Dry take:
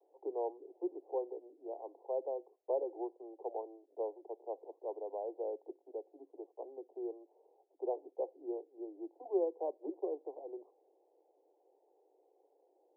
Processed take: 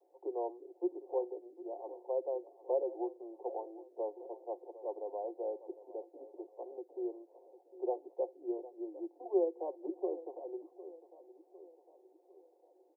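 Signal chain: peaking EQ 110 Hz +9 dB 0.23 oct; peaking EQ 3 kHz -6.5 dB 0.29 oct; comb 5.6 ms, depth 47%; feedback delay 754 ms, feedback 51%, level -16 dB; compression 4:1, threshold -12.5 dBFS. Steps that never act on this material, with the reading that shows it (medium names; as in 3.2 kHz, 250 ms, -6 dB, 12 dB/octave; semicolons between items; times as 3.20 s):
peaking EQ 110 Hz: input has nothing below 250 Hz; peaking EQ 3 kHz: input has nothing above 1 kHz; compression, threshold -12.5 dBFS: peak at its input -19.5 dBFS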